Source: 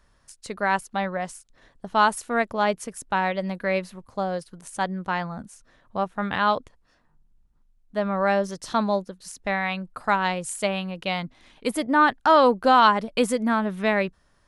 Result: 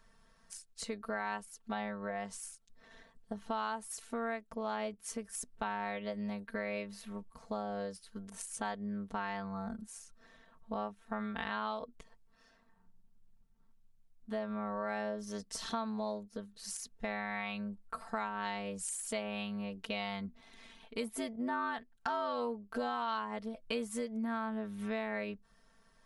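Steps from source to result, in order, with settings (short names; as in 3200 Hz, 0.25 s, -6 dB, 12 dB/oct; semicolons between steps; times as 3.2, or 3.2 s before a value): granular stretch 1.8×, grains 20 ms; compressor 4:1, threshold -35 dBFS, peak gain reduction 18.5 dB; gain -1.5 dB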